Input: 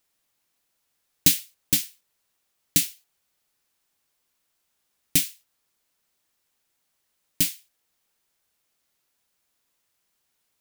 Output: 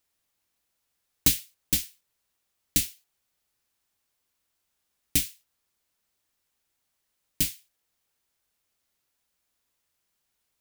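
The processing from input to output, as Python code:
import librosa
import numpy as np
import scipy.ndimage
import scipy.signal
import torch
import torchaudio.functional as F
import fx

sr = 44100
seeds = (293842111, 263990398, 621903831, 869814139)

y = fx.octave_divider(x, sr, octaves=2, level_db=-1.0)
y = (np.mod(10.0 ** (2.5 / 20.0) * y + 1.0, 2.0) - 1.0) / 10.0 ** (2.5 / 20.0)
y = y * 10.0 ** (-3.5 / 20.0)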